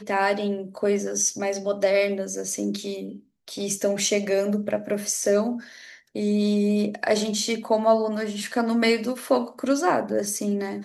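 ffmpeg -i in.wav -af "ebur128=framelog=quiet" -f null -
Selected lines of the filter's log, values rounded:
Integrated loudness:
  I:         -24.2 LUFS
  Threshold: -34.5 LUFS
Loudness range:
  LRA:         2.6 LU
  Threshold: -44.5 LUFS
  LRA low:   -25.8 LUFS
  LRA high:  -23.2 LUFS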